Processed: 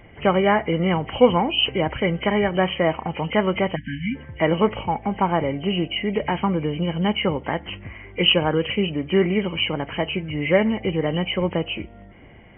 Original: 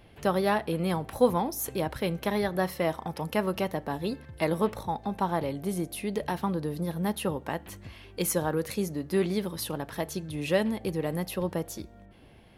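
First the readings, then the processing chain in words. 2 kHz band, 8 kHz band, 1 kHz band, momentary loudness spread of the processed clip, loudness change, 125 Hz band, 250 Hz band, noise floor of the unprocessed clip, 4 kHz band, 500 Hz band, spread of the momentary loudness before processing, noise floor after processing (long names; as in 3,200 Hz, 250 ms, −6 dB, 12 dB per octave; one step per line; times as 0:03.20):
+11.0 dB, below −40 dB, +7.5 dB, 10 LU, +8.0 dB, +7.5 dB, +7.5 dB, −52 dBFS, +16.5 dB, +7.5 dB, 7 LU, −45 dBFS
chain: hearing-aid frequency compression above 1,900 Hz 4 to 1
time-frequency box erased 0:03.76–0:04.15, 280–1,500 Hz
level +7.5 dB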